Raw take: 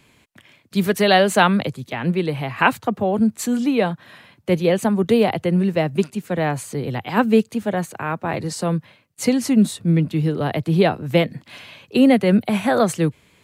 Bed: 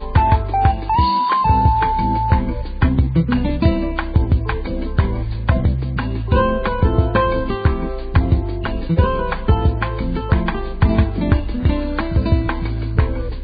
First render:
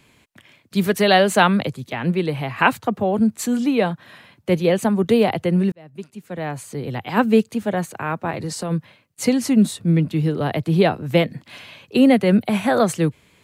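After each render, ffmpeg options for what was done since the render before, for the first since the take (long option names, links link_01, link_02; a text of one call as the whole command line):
ffmpeg -i in.wav -filter_complex "[0:a]asplit=3[link_01][link_02][link_03];[link_01]afade=type=out:start_time=8.3:duration=0.02[link_04];[link_02]acompressor=threshold=-22dB:ratio=6:attack=3.2:release=140:knee=1:detection=peak,afade=type=in:start_time=8.3:duration=0.02,afade=type=out:start_time=8.7:duration=0.02[link_05];[link_03]afade=type=in:start_time=8.7:duration=0.02[link_06];[link_04][link_05][link_06]amix=inputs=3:normalize=0,asplit=2[link_07][link_08];[link_07]atrim=end=5.72,asetpts=PTS-STARTPTS,afade=type=out:start_time=5.716:duration=0.004:curve=hsin[link_09];[link_08]atrim=start=5.72,asetpts=PTS-STARTPTS,afade=type=in:duration=1.48[link_10];[link_09][link_10]concat=n=2:v=0:a=1" out.wav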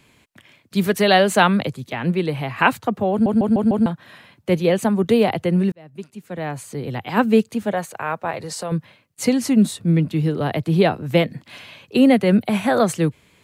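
ffmpeg -i in.wav -filter_complex "[0:a]asettb=1/sr,asplit=3[link_01][link_02][link_03];[link_01]atrim=end=7.724[link_04];[link_02]atrim=start=7.72:end=8.72,asetpts=PTS-STARTPTS,afade=type=in:duration=0.004:curve=qsin,afade=type=out:start_time=0.996:duration=0.004:curve=qsin,lowshelf=frequency=400:width_type=q:width=1.5:gain=-6[link_05];[link_03]atrim=start=8.716[link_06];[link_04][link_05]acrossfade=duration=0.004:curve1=hsin:curve2=qsin[link_07];[link_07][link_06]acrossfade=duration=0.004:curve1=qsin:curve2=hsin,asplit=6[link_08][link_09][link_10][link_11][link_12][link_13];[link_08]atrim=end=3.262[link_14];[link_09]atrim=start=3.108:end=3.262[link_15];[link_10]atrim=start=3.108:end=3.262[link_16];[link_11]atrim=start=3.108:end=3.262[link_17];[link_12]atrim=start=3.108:end=3.262[link_18];[link_13]atrim=start=3.858[link_19];[link_14][link_15]acrossfade=duration=0.004:curve1=hsin:curve2=hsin[link_20];[link_20][link_16]acrossfade=duration=0.004:curve1=hsin:curve2=hsin[link_21];[link_21][link_17]acrossfade=duration=0.004:curve1=hsin:curve2=hsin[link_22];[link_22][link_18]acrossfade=duration=0.004:curve1=hsin:curve2=hsin[link_23];[link_23][link_19]acrossfade=duration=0.004:curve1=hsin:curve2=hsin" out.wav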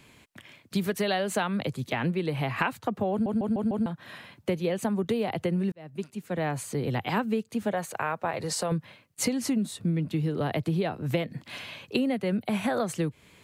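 ffmpeg -i in.wav -af "acompressor=threshold=-24dB:ratio=10" out.wav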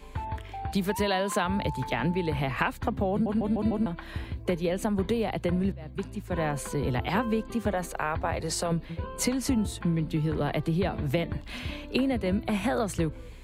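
ffmpeg -i in.wav -i bed.wav -filter_complex "[1:a]volume=-20.5dB[link_01];[0:a][link_01]amix=inputs=2:normalize=0" out.wav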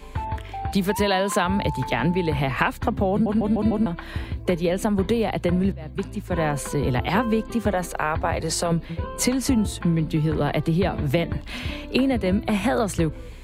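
ffmpeg -i in.wav -af "volume=5.5dB" out.wav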